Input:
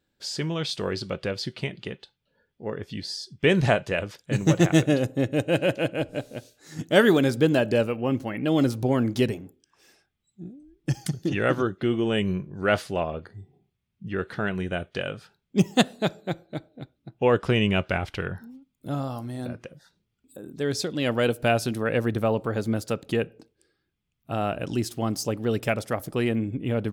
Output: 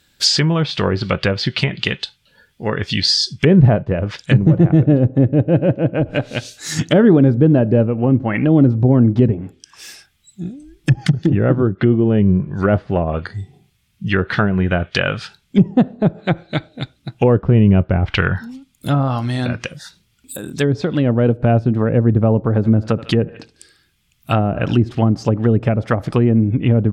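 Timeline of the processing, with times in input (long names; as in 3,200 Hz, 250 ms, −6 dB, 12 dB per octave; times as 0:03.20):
0:22.54–0:24.95: repeating echo 73 ms, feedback 44%, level −20 dB
whole clip: treble cut that deepens with the level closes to 470 Hz, closed at −22 dBFS; guitar amp tone stack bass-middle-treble 5-5-5; boost into a limiter +31 dB; level −1 dB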